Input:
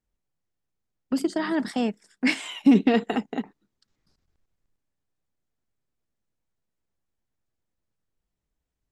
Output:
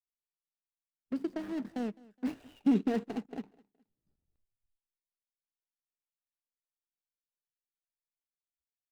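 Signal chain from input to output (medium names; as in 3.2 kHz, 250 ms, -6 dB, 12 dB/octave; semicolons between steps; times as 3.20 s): median filter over 41 samples; spectral noise reduction 26 dB; on a send: feedback delay 209 ms, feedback 32%, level -23 dB; on the sum: trim -9 dB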